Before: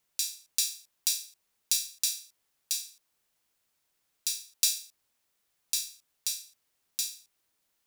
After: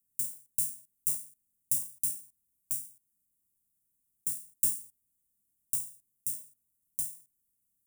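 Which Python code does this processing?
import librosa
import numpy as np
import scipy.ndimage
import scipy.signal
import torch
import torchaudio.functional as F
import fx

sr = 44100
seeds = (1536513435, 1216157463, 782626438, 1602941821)

y = (np.kron(x[::3], np.eye(3)[0]) * 3)[:len(x)]
y = scipy.signal.sosfilt(scipy.signal.cheby2(4, 80, [1000.0, 2500.0], 'bandstop', fs=sr, output='sos'), y)
y = F.gain(torch.from_numpy(y), -4.0).numpy()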